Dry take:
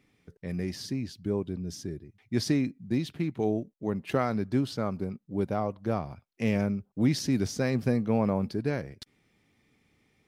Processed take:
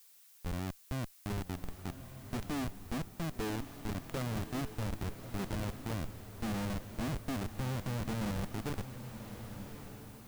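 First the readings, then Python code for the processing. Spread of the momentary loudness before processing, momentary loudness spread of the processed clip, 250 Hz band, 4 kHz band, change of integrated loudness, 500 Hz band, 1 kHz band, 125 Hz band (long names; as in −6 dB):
10 LU, 9 LU, −10.5 dB, −6.5 dB, −9.5 dB, −12.5 dB, −6.5 dB, −6.0 dB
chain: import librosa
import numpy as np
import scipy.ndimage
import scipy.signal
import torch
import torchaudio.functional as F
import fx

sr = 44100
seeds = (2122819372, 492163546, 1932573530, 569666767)

y = fx.high_shelf(x, sr, hz=2800.0, db=-8.5)
y = fx.schmitt(y, sr, flips_db=-29.0)
y = fx.echo_diffused(y, sr, ms=1176, feedback_pct=41, wet_db=-9.5)
y = fx.dmg_noise_colour(y, sr, seeds[0], colour='blue', level_db=-56.0)
y = y * librosa.db_to_amplitude(-4.5)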